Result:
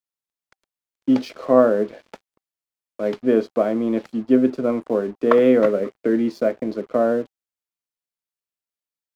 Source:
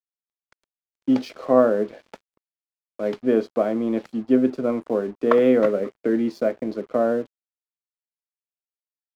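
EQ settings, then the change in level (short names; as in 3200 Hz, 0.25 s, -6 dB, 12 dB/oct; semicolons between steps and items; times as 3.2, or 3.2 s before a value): notch 780 Hz, Q 23; +2.0 dB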